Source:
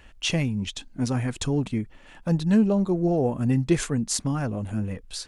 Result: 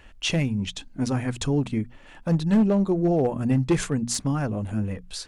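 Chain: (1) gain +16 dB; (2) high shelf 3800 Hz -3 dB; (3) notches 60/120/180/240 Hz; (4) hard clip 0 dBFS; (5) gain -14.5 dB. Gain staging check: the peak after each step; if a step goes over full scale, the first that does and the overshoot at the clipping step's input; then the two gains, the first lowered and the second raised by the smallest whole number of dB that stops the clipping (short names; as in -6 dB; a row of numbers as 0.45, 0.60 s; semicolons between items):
+6.5, +6.5, +6.0, 0.0, -14.5 dBFS; step 1, 6.0 dB; step 1 +10 dB, step 5 -8.5 dB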